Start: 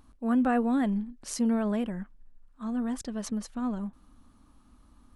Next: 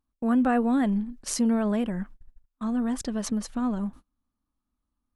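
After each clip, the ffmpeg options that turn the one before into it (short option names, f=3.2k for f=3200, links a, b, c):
-filter_complex "[0:a]agate=range=-31dB:threshold=-47dB:ratio=16:detection=peak,asplit=2[a][b];[b]acompressor=threshold=-35dB:ratio=6,volume=2dB[c];[a][c]amix=inputs=2:normalize=0"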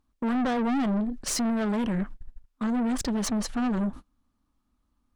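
-af "highshelf=f=9.5k:g=-10,alimiter=limit=-18.5dB:level=0:latency=1:release=20,aeval=exprs='(tanh(44.7*val(0)+0.2)-tanh(0.2))/44.7':c=same,volume=9dB"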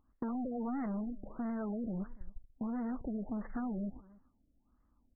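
-af "acompressor=threshold=-38dB:ratio=5,aecho=1:1:288:0.075,afftfilt=real='re*lt(b*sr/1024,680*pow(2200/680,0.5+0.5*sin(2*PI*1.5*pts/sr)))':imag='im*lt(b*sr/1024,680*pow(2200/680,0.5+0.5*sin(2*PI*1.5*pts/sr)))':win_size=1024:overlap=0.75,volume=1dB"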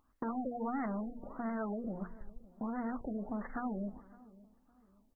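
-filter_complex "[0:a]lowshelf=f=440:g=-10,bandreject=f=60:t=h:w=6,bandreject=f=120:t=h:w=6,bandreject=f=180:t=h:w=6,bandreject=f=240:t=h:w=6,bandreject=f=300:t=h:w=6,bandreject=f=360:t=h:w=6,bandreject=f=420:t=h:w=6,bandreject=f=480:t=h:w=6,asplit=2[a][b];[b]adelay=562,lowpass=f=970:p=1,volume=-20.5dB,asplit=2[c][d];[d]adelay=562,lowpass=f=970:p=1,volume=0.38,asplit=2[e][f];[f]adelay=562,lowpass=f=970:p=1,volume=0.38[g];[a][c][e][g]amix=inputs=4:normalize=0,volume=7dB"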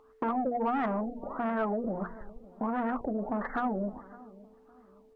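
-filter_complex "[0:a]aeval=exprs='val(0)+0.000398*sin(2*PI*440*n/s)':c=same,asplit=2[a][b];[b]highpass=f=720:p=1,volume=13dB,asoftclip=type=tanh:threshold=-24.5dB[c];[a][c]amix=inputs=2:normalize=0,lowpass=f=1.6k:p=1,volume=-6dB,volume=6.5dB"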